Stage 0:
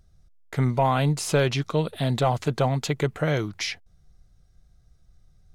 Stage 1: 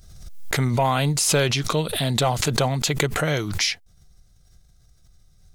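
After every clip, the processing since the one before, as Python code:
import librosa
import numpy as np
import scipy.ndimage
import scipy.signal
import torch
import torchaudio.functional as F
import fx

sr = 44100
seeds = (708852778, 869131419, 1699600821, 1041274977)

y = fx.high_shelf(x, sr, hz=2900.0, db=11.0)
y = fx.pre_swell(y, sr, db_per_s=49.0)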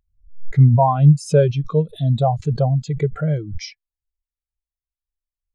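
y = fx.spectral_expand(x, sr, expansion=2.5)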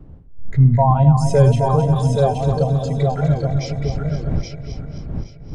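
y = fx.reverse_delay_fb(x, sr, ms=130, feedback_pct=73, wet_db=-7.5)
y = fx.dmg_wind(y, sr, seeds[0], corner_hz=120.0, level_db=-30.0)
y = fx.echo_feedback(y, sr, ms=823, feedback_pct=19, wet_db=-4.5)
y = y * 10.0 ** (-1.0 / 20.0)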